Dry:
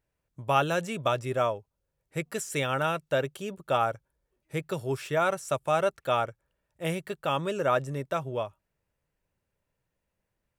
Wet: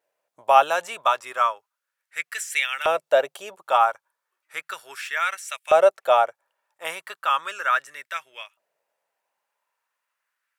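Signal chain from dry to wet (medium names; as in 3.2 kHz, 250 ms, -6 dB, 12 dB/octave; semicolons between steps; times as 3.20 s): vibrato 1.3 Hz 28 cents; LFO high-pass saw up 0.35 Hz 560–2300 Hz; trim +4 dB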